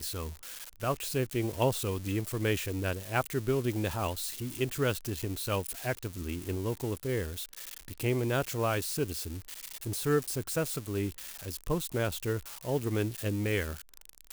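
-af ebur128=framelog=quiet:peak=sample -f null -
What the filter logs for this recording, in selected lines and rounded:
Integrated loudness:
  I:         -32.8 LUFS
  Threshold: -42.9 LUFS
Loudness range:
  LRA:         2.3 LU
  Threshold: -52.8 LUFS
  LRA low:   -33.8 LUFS
  LRA high:  -31.5 LUFS
Sample peak:
  Peak:      -14.2 dBFS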